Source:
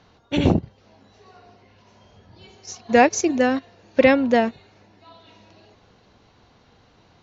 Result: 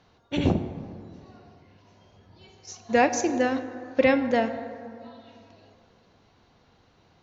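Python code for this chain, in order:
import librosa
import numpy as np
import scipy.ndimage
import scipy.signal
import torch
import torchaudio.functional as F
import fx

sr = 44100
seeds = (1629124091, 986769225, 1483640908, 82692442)

y = fx.rev_plate(x, sr, seeds[0], rt60_s=2.5, hf_ratio=0.4, predelay_ms=0, drr_db=9.0)
y = y * 10.0 ** (-5.5 / 20.0)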